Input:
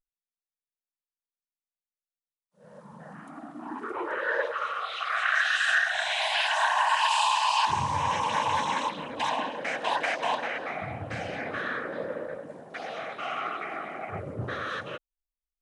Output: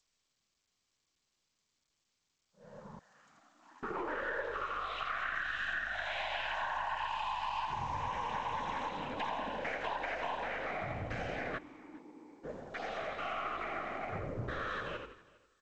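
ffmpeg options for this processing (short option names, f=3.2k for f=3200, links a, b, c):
-filter_complex "[0:a]aeval=exprs='if(lt(val(0),0),0.708*val(0),val(0))':c=same,acrossover=split=3000[a][b];[b]acompressor=threshold=-51dB:ratio=4:attack=1:release=60[c];[a][c]amix=inputs=2:normalize=0,asplit=2[d][e];[e]asplit=4[f][g][h][i];[f]adelay=84,afreqshift=-52,volume=-6dB[j];[g]adelay=168,afreqshift=-104,volume=-14.6dB[k];[h]adelay=252,afreqshift=-156,volume=-23.3dB[l];[i]adelay=336,afreqshift=-208,volume=-31.9dB[m];[j][k][l][m]amix=inputs=4:normalize=0[n];[d][n]amix=inputs=2:normalize=0,acompressor=threshold=-32dB:ratio=6,asettb=1/sr,asplit=3[o][p][q];[o]atrim=end=2.994[r];[p]atrim=start=2.99:end=3.83,asetpts=PTS-STARTPTS,afade=t=in:d=0.004:c=qsin,afade=t=out:st=0.836:d=0.004:c=qsin,aderivative[s];[q]atrim=start=3.826[t];[r][s]acrossfade=d=0.004:c1=hsin:c2=qsin[u];[u][t]acrossfade=d=0.004:c1=qsin:c2=hsin,asplit=3[v][w][x];[v]afade=t=out:st=11.57:d=0.02[y];[w]asplit=3[z][aa][ab];[z]bandpass=f=300:t=q:w=8,volume=0dB[ac];[aa]bandpass=f=870:t=q:w=8,volume=-6dB[ad];[ab]bandpass=f=2.24k:t=q:w=8,volume=-9dB[ae];[ac][ad][ae]amix=inputs=3:normalize=0,afade=t=in:st=11.57:d=0.02,afade=t=out:st=12.43:d=0.02[af];[x]afade=t=in:st=12.43:d=0.02[ag];[y][af][ag]amix=inputs=3:normalize=0,asplit=2[ah][ai];[ai]aecho=0:1:406|812:0.0668|0.0127[aj];[ah][aj]amix=inputs=2:normalize=0,volume=-2dB" -ar 16000 -c:a g722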